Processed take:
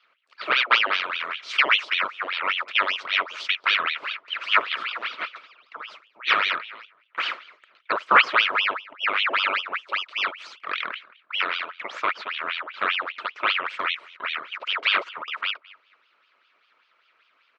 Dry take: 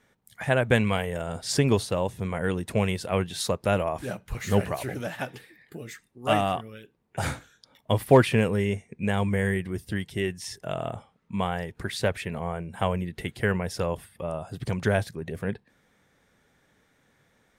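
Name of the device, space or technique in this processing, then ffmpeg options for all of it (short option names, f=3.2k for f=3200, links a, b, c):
voice changer toy: -filter_complex "[0:a]asettb=1/sr,asplit=3[a][b][c];[a]atrim=end=8.604[d];[b]atrim=start=8.6:end=9.32,asetpts=PTS-STARTPTS,afade=t=in:d=0.004:c=qsin,afade=t=out:st=0.716:d=0.004:c=qsin,acrossover=split=2800[e][f];[f]acompressor=threshold=-52dB:ratio=4:attack=1:release=60[g];[e][g]amix=inputs=2:normalize=0[h];[c]atrim=start=9.316[i];[d][h]acrossfade=d=0.004:c1=hsin:c2=qsin[j];[j][i]acrossfade=d=0.004:c1=qsin:c2=hsin,asplit=2[k][l];[l]adelay=219,lowpass=f=1.4k:p=1,volume=-21.5dB,asplit=2[m][n];[n]adelay=219,lowpass=f=1.4k:p=1,volume=0.2[o];[k][m][o]amix=inputs=3:normalize=0,aeval=exprs='val(0)*sin(2*PI*1800*n/s+1800*0.75/5.1*sin(2*PI*5.1*n/s))':c=same,highpass=540,equalizer=f=790:t=q:w=4:g=-10,equalizer=f=1.3k:t=q:w=4:g=8,equalizer=f=2.3k:t=q:w=4:g=4,lowpass=f=4.2k:w=0.5412,lowpass=f=4.2k:w=1.3066,volume=3dB"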